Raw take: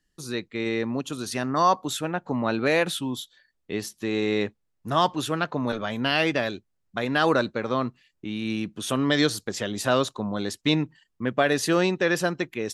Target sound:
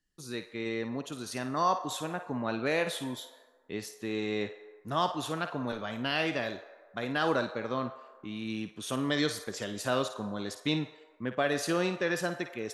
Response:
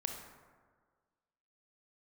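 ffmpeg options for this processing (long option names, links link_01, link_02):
-filter_complex "[0:a]asplit=2[link_01][link_02];[link_02]highpass=frequency=460:width=0.5412,highpass=frequency=460:width=1.3066[link_03];[1:a]atrim=start_sample=2205,adelay=54[link_04];[link_03][link_04]afir=irnorm=-1:irlink=0,volume=-8dB[link_05];[link_01][link_05]amix=inputs=2:normalize=0,volume=-7.5dB"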